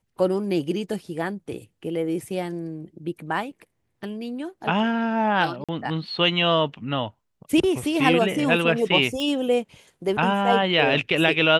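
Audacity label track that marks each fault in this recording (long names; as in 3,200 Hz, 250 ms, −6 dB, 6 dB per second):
5.640000	5.690000	drop-out 46 ms
9.200000	9.200000	click −16 dBFS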